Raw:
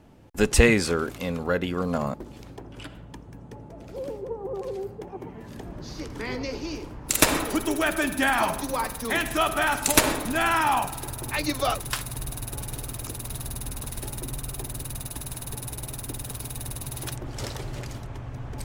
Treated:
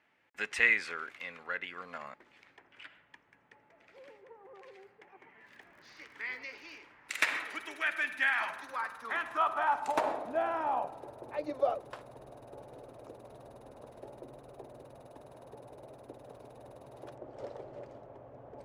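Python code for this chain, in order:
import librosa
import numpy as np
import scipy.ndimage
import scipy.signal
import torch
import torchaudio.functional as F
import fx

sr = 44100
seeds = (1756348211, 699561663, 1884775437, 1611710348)

y = fx.filter_sweep_bandpass(x, sr, from_hz=2000.0, to_hz=560.0, start_s=8.31, end_s=10.59, q=2.9)
y = fx.dmg_crackle(y, sr, seeds[0], per_s=70.0, level_db=-53.0, at=(5.42, 6.81), fade=0.02)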